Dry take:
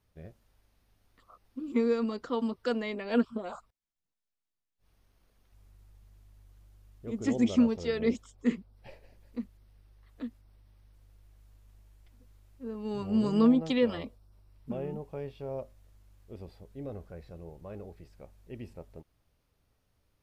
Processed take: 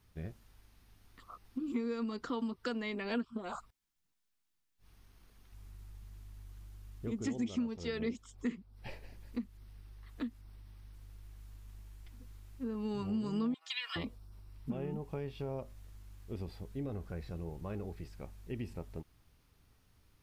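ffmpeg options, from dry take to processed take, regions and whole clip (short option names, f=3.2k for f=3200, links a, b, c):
-filter_complex "[0:a]asettb=1/sr,asplit=3[a][b][c];[a]atrim=end=13.544[d];[b]atrim=start=13.54:end=13.96,asetpts=PTS-STARTPTS,afade=t=in:d=0.004:c=qsin,afade=t=out:st=0.416:d=0.004:c=qsin,highpass=f=1.3k:w=0.5412,highpass=f=1.3k:w=1.3066,aecho=1:1:2.8:0.83,atrim=end_sample=18522[e];[c]atrim=start=13.956[f];[d][e]acrossfade=d=0.004:c1=hsin:c2=qsin[g];[g][f]acrossfade=d=0.004:c1=qsin:c2=hsin,equalizer=f=570:w=2:g=-8,acompressor=threshold=-42dB:ratio=4,volume=6.5dB"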